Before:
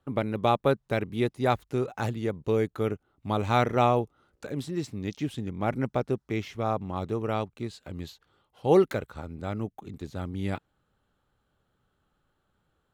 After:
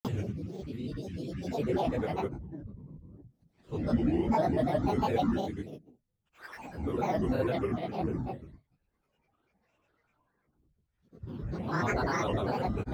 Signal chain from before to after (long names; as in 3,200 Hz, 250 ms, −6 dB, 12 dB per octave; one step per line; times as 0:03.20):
extreme stretch with random phases 9.6×, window 0.05 s, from 0:02.08
granular cloud, pitch spread up and down by 12 semitones
level −3 dB